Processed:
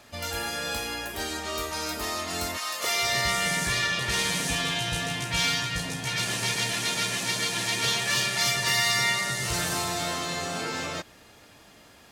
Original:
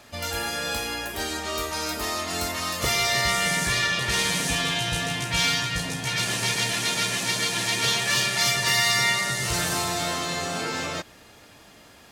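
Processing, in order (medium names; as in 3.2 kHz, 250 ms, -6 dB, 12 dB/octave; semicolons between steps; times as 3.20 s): 2.57–3.02 s: high-pass 890 Hz -> 290 Hz 12 dB/octave; trim -2.5 dB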